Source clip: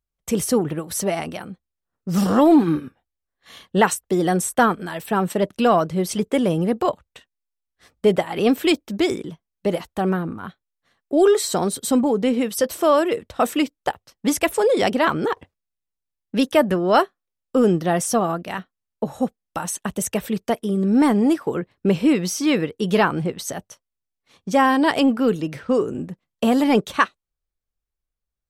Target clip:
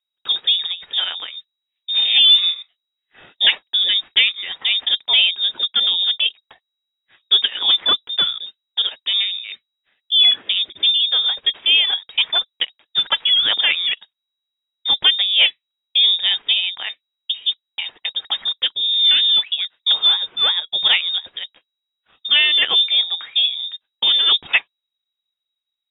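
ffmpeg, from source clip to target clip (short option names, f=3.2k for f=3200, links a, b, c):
-af "lowpass=f=3k:t=q:w=0.5098,lowpass=f=3k:t=q:w=0.6013,lowpass=f=3k:t=q:w=0.9,lowpass=f=3k:t=q:w=2.563,afreqshift=-3500,asetrate=48510,aresample=44100,volume=1.5dB"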